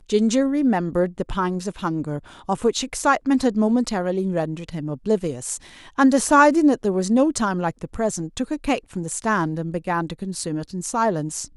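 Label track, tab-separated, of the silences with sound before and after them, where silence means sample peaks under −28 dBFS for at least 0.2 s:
2.190000	2.490000	silence
5.570000	5.980000	silence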